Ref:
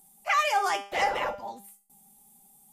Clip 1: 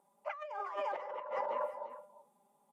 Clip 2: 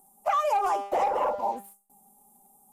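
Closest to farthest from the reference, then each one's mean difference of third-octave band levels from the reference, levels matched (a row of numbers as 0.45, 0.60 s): 2, 1; 4.0, 10.0 dB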